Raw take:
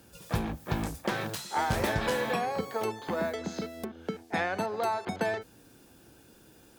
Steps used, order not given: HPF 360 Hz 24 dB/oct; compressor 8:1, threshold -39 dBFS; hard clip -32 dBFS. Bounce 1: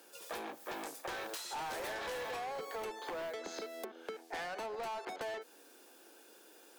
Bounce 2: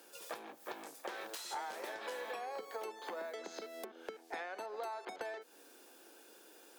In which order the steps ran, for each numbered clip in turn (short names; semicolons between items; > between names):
HPF > hard clip > compressor; compressor > HPF > hard clip